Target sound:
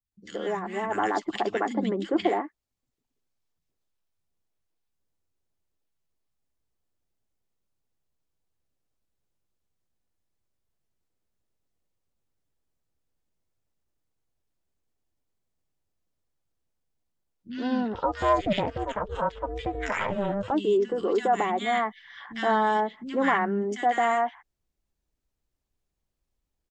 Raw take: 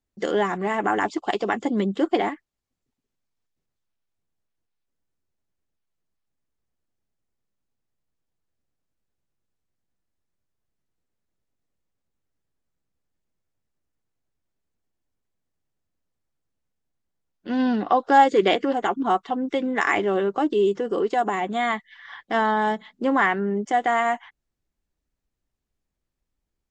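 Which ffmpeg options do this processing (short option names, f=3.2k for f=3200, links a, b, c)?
-filter_complex "[0:a]dynaudnorm=f=460:g=3:m=8dB,acrossover=split=210|1700[a][b][c];[c]adelay=50[d];[b]adelay=120[e];[a][e][d]amix=inputs=3:normalize=0,asettb=1/sr,asplit=3[f][g][h];[f]atrim=end=17.944[i];[g]atrim=start=17.94:end=20.51,asetpts=PTS-STARTPTS,afade=t=in:d=0.004:c=qsin,afade=t=out:st=2.566:d=0.004:c=qsin,aeval=exprs='val(0)*sin(2*PI*200*n/s)':c=same[j];[h]atrim=start=20.506[k];[i][j]acrossfade=d=0.004:c1=hsin:c2=qsin[l];[l][k]acrossfade=d=0.004:c1=qsin:c2=hsin,volume=-7.5dB"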